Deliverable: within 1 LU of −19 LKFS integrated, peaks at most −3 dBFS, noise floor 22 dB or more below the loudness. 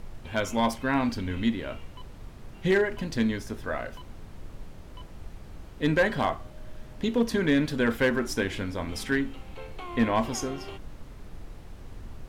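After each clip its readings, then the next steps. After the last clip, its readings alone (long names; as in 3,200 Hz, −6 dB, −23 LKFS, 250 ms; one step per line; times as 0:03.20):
share of clipped samples 0.3%; peaks flattened at −16.0 dBFS; background noise floor −45 dBFS; target noise floor −50 dBFS; integrated loudness −28.0 LKFS; sample peak −16.0 dBFS; target loudness −19.0 LKFS
→ clipped peaks rebuilt −16 dBFS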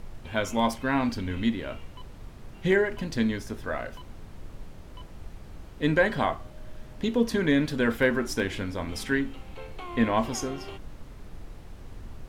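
share of clipped samples 0.0%; background noise floor −45 dBFS; target noise floor −50 dBFS
→ noise reduction from a noise print 6 dB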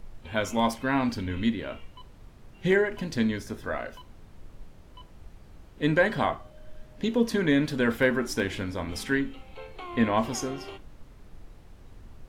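background noise floor −51 dBFS; integrated loudness −27.5 LKFS; sample peak −10.0 dBFS; target loudness −19.0 LKFS
→ level +8.5 dB
brickwall limiter −3 dBFS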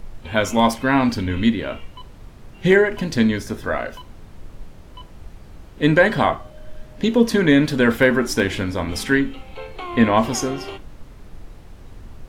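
integrated loudness −19.0 LKFS; sample peak −3.0 dBFS; background noise floor −43 dBFS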